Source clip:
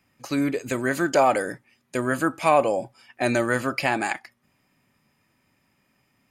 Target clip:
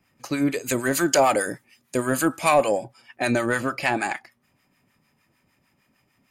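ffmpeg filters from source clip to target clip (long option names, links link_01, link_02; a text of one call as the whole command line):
ffmpeg -i in.wav -filter_complex "[0:a]asettb=1/sr,asplit=3[link_01][link_02][link_03];[link_01]atrim=end=0.514[link_04];[link_02]atrim=start=0.51:end=2.78,asetpts=PTS-STARTPTS,afade=type=in:duration=0.004:curve=qsin,afade=type=out:start_time=2.266:duration=0.004:curve=qsin,highshelf=frequency=4200:gain=10.5[link_05];[link_03]atrim=start=2.776[link_06];[link_04][link_05]acrossfade=duration=0.004:curve1=hsin:curve2=qsin[link_07];[link_07][link_06]acrossfade=duration=0.004:curve1=qsin:curve2=hsin,acontrast=88,acrossover=split=850[link_08][link_09];[link_08]aeval=exprs='val(0)*(1-0.7/2+0.7/2*cos(2*PI*6.6*n/s))':channel_layout=same[link_10];[link_09]aeval=exprs='val(0)*(1-0.7/2-0.7/2*cos(2*PI*6.6*n/s))':channel_layout=same[link_11];[link_10][link_11]amix=inputs=2:normalize=0,volume=-3dB" out.wav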